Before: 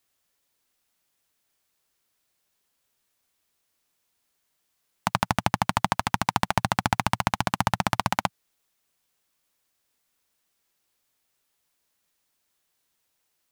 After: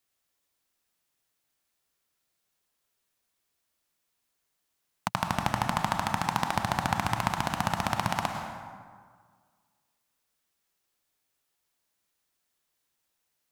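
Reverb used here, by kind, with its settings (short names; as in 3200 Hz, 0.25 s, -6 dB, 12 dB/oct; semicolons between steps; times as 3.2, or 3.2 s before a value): plate-style reverb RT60 1.8 s, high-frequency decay 0.55×, pre-delay 90 ms, DRR 4 dB; gain -5 dB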